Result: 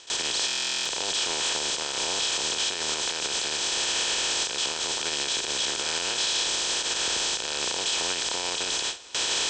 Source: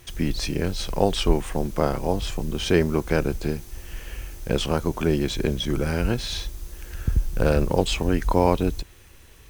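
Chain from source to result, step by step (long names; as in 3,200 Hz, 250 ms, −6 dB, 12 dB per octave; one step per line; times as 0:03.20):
compressor on every frequency bin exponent 0.2
camcorder AGC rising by 6.1 dB per second
Butterworth low-pass 8,000 Hz 72 dB per octave
noise gate with hold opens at −6 dBFS
first difference
brickwall limiter −21 dBFS, peak gain reduction 10.5 dB
on a send at −20.5 dB: convolution reverb RT60 3.7 s, pre-delay 46 ms
on the sum: buffer that repeats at 0:00.46, samples 1,024, times 16
level +4.5 dB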